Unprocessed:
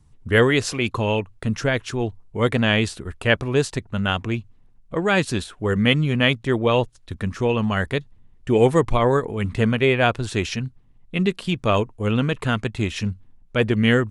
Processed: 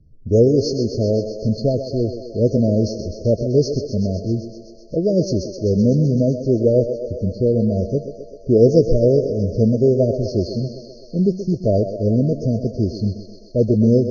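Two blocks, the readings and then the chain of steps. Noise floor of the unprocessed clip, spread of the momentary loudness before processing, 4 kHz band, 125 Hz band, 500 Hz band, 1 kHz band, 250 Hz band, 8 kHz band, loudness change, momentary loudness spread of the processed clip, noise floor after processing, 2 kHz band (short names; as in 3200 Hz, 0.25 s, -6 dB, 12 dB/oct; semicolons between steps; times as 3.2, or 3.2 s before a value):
-53 dBFS, 11 LU, -9.5 dB, +4.0 dB, +5.0 dB, under -10 dB, +4.5 dB, n/a, +3.0 dB, 10 LU, -41 dBFS, under -40 dB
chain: nonlinear frequency compression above 2400 Hz 1.5:1; low-pass opened by the level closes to 2000 Hz, open at -15 dBFS; FFT band-reject 680–4200 Hz; thinning echo 0.128 s, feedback 80%, high-pass 310 Hz, level -8 dB; gain +4 dB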